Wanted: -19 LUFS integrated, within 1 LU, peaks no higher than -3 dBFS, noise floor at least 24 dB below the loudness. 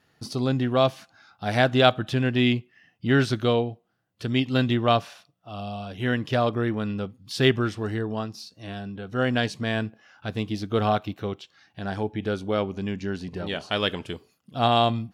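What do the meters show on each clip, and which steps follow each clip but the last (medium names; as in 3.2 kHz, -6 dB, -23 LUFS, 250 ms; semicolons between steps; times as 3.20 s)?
loudness -25.5 LUFS; peak level -4.5 dBFS; loudness target -19.0 LUFS
-> trim +6.5 dB; peak limiter -3 dBFS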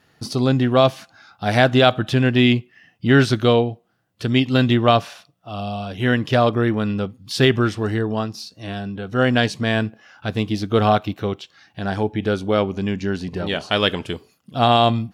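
loudness -19.5 LUFS; peak level -3.0 dBFS; noise floor -62 dBFS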